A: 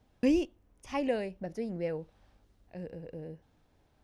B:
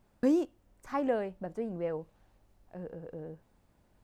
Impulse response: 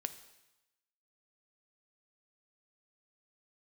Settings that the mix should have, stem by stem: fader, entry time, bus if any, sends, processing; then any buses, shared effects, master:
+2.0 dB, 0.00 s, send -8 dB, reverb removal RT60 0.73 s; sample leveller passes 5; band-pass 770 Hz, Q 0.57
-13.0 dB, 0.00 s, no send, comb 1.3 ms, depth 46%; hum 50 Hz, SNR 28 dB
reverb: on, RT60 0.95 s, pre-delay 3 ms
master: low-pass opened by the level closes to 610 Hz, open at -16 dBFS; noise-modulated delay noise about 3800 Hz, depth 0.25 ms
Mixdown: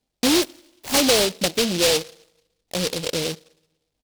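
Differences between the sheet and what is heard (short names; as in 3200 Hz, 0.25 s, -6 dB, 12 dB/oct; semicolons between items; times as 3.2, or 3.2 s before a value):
stem B -13.0 dB -> -21.0 dB; master: missing low-pass opened by the level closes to 610 Hz, open at -16 dBFS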